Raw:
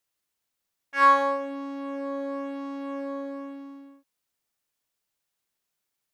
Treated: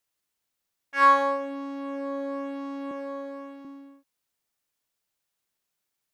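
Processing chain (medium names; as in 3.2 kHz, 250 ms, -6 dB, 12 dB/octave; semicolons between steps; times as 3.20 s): 2.91–3.65 s: high-pass 320 Hz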